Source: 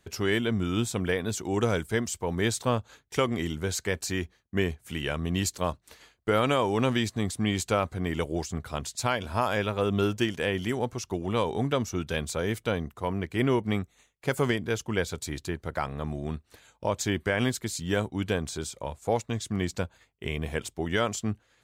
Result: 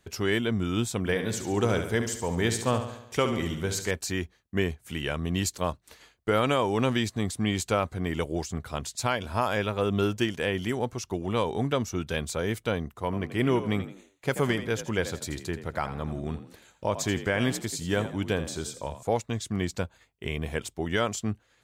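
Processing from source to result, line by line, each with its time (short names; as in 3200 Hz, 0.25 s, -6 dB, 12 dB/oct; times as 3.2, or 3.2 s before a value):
0.98–3.91 feedback echo 70 ms, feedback 55%, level -9 dB
13.04–19.03 frequency-shifting echo 83 ms, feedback 35%, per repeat +48 Hz, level -12 dB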